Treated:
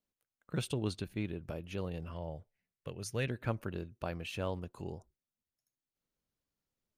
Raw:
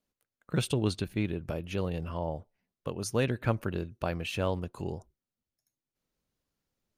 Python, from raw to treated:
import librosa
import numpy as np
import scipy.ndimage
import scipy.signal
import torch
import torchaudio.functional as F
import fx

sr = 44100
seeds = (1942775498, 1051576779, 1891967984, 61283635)

y = fx.graphic_eq(x, sr, hz=(125, 250, 1000, 2000), db=(3, -5, -7, 6), at=(2.13, 3.27))
y = y * 10.0 ** (-6.5 / 20.0)